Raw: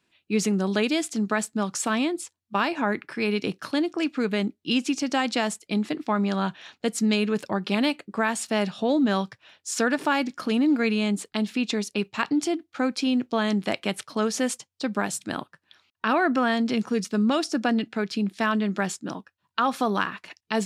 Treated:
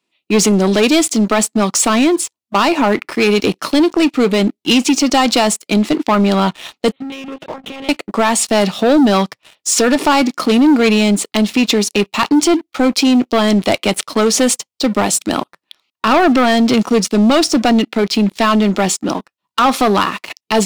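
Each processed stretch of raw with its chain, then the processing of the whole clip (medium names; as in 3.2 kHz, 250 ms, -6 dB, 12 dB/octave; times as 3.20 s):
6.92–7.89 s: hum notches 60/120/180/240/300/360 Hz + compression 12:1, threshold -35 dBFS + monotone LPC vocoder at 8 kHz 270 Hz
whole clip: high-pass 220 Hz 12 dB/octave; peaking EQ 1.6 kHz -14.5 dB 0.21 oct; waveshaping leveller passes 3; trim +5.5 dB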